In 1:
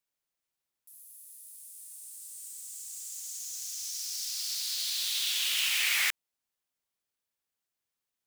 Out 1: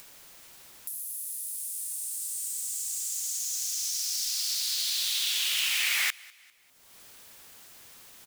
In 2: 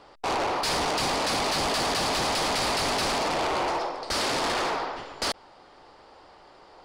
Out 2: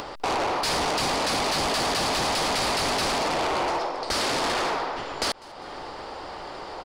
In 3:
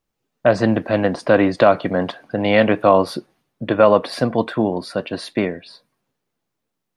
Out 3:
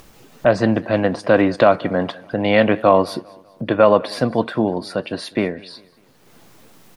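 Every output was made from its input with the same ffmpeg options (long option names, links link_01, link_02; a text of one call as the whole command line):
ffmpeg -i in.wav -af "acompressor=mode=upward:threshold=-23dB:ratio=2.5,aecho=1:1:199|398|597:0.0668|0.0287|0.0124" out.wav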